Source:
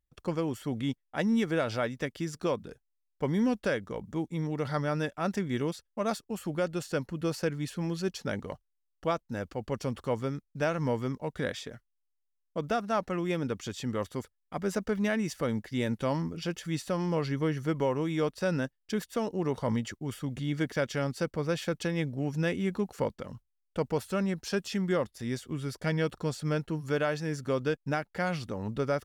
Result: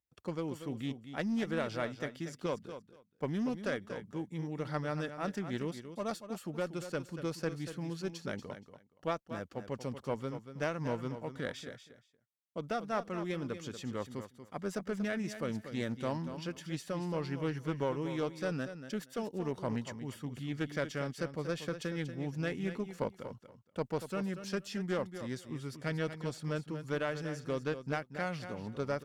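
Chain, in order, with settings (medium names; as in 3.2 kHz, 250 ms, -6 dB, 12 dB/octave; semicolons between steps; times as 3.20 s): high-pass 89 Hz; Chebyshev shaper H 2 -11 dB, 8 -32 dB, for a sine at -16 dBFS; feedback delay 236 ms, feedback 17%, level -10.5 dB; loudspeaker Doppler distortion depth 0.13 ms; trim -6.5 dB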